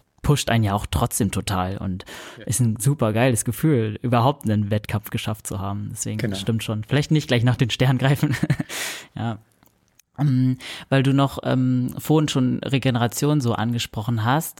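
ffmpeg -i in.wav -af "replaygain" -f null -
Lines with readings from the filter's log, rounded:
track_gain = +2.6 dB
track_peak = 0.340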